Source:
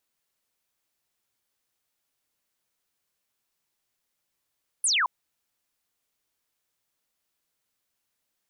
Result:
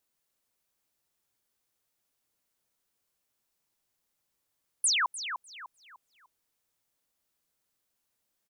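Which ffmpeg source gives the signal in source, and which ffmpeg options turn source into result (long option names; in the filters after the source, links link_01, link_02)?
-f lavfi -i "aevalsrc='0.0944*clip(t/0.002,0,1)*clip((0.22-t)/0.002,0,1)*sin(2*PI*11000*0.22/log(910/11000)*(exp(log(910/11000)*t/0.22)-1))':duration=0.22:sample_rate=44100"
-filter_complex "[0:a]equalizer=frequency=2400:width_type=o:width=2.5:gain=-3.5,asplit=2[link_01][link_02];[link_02]adelay=300,lowpass=frequency=3900:poles=1,volume=-7.5dB,asplit=2[link_03][link_04];[link_04]adelay=300,lowpass=frequency=3900:poles=1,volume=0.37,asplit=2[link_05][link_06];[link_06]adelay=300,lowpass=frequency=3900:poles=1,volume=0.37,asplit=2[link_07][link_08];[link_08]adelay=300,lowpass=frequency=3900:poles=1,volume=0.37[link_09];[link_01][link_03][link_05][link_07][link_09]amix=inputs=5:normalize=0"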